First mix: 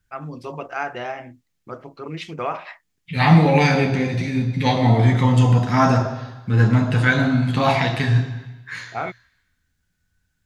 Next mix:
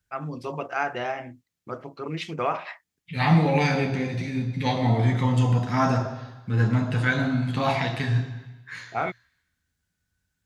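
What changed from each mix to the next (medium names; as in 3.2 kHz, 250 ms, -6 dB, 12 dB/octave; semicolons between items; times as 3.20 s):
second voice -6.0 dB; master: add high-pass 45 Hz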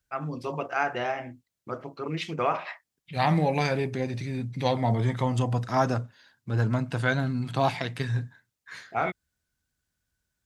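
reverb: off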